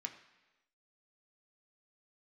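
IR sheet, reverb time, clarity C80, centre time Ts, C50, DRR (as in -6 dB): 1.1 s, 12.5 dB, 14 ms, 10.5 dB, 3.5 dB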